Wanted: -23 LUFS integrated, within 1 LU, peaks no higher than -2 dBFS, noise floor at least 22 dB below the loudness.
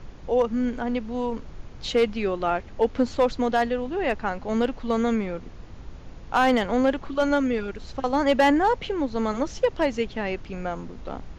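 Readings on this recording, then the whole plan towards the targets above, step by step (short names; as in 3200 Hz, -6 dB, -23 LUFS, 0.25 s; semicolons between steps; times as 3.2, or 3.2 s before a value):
clipped 0.3%; flat tops at -12.5 dBFS; noise floor -43 dBFS; noise floor target -47 dBFS; loudness -25.0 LUFS; peak -12.5 dBFS; loudness target -23.0 LUFS
-> clip repair -12.5 dBFS; noise print and reduce 6 dB; gain +2 dB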